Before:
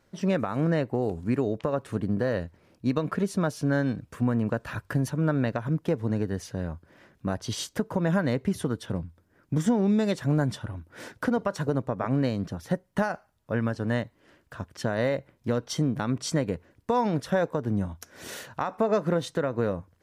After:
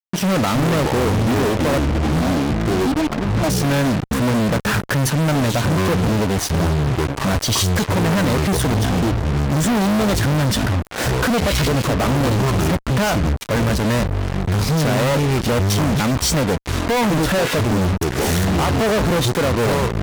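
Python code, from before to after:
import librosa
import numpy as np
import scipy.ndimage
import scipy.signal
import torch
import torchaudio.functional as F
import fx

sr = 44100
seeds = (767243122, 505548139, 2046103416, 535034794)

y = fx.double_bandpass(x, sr, hz=460.0, octaves=1.2, at=(1.78, 3.49))
y = fx.echo_pitch(y, sr, ms=206, semitones=-7, count=2, db_per_echo=-6.0)
y = fx.fuzz(y, sr, gain_db=49.0, gate_db=-42.0)
y = y * 10.0 ** (-2.5 / 20.0)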